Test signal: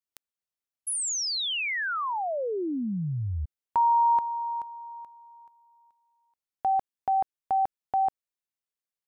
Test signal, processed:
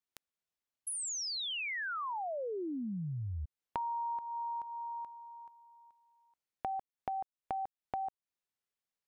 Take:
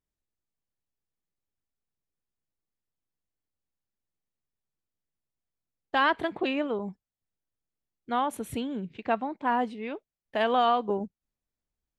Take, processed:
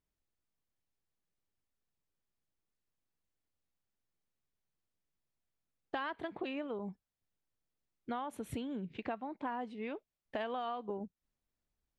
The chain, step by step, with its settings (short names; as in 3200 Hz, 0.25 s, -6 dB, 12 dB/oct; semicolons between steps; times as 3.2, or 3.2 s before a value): high shelf 7100 Hz -8 dB; compressor 6:1, threshold -38 dBFS; gain +1 dB